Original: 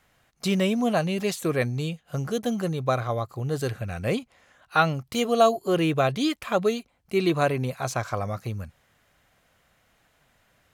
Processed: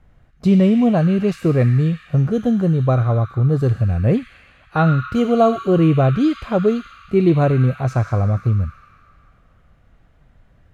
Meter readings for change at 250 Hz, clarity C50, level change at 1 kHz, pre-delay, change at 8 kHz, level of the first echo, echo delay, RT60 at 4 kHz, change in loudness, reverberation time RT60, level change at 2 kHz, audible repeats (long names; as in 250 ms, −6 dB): +10.5 dB, 3.5 dB, +2.5 dB, 4 ms, can't be measured, no echo audible, no echo audible, 2.0 s, +8.5 dB, 2.6 s, 0.0 dB, no echo audible